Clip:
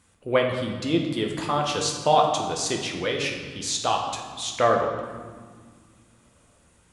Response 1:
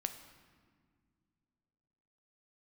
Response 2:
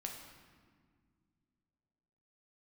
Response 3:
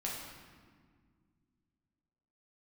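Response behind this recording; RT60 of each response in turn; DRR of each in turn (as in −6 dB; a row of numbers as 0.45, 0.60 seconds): 2; non-exponential decay, 1.9 s, 1.8 s; 7.0, 0.5, −4.5 decibels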